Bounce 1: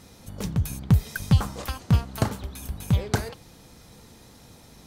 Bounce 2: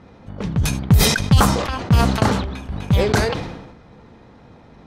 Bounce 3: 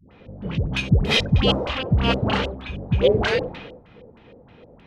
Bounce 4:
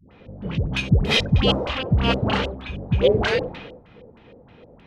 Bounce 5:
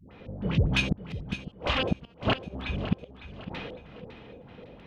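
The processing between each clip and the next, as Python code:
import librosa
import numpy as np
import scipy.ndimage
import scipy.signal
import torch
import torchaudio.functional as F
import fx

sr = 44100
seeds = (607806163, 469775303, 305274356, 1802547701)

y1 = fx.env_lowpass(x, sr, base_hz=1700.0, full_db=-16.0)
y1 = fx.low_shelf(y1, sr, hz=110.0, db=-5.0)
y1 = fx.sustainer(y1, sr, db_per_s=50.0)
y1 = F.gain(torch.from_numpy(y1), 6.5).numpy()
y2 = fx.filter_lfo_lowpass(y1, sr, shape='square', hz=3.2, low_hz=520.0, high_hz=2900.0, q=3.5)
y2 = fx.high_shelf(y2, sr, hz=5300.0, db=7.0)
y2 = fx.dispersion(y2, sr, late='highs', ms=113.0, hz=540.0)
y2 = F.gain(torch.from_numpy(y2), -5.0).numpy()
y3 = y2
y4 = fx.gate_flip(y3, sr, shuts_db=-12.0, range_db=-40)
y4 = fx.echo_feedback(y4, sr, ms=555, feedback_pct=39, wet_db=-13.0)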